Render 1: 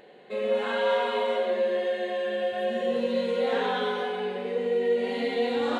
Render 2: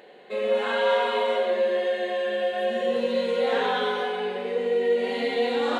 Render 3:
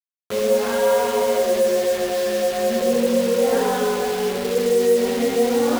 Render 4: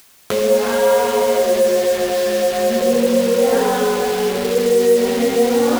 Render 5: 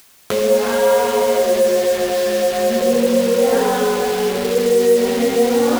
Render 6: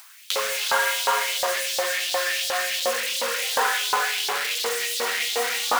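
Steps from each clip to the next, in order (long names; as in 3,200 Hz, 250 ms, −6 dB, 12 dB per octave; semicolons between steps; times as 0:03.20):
high-pass filter 300 Hz 6 dB per octave; level +3.5 dB
spectral tilt −4.5 dB per octave; bit reduction 5 bits; level +1 dB
upward compression, threshold −19 dBFS; level +3.5 dB
no processing that can be heard
auto-filter high-pass saw up 2.8 Hz 910–4,100 Hz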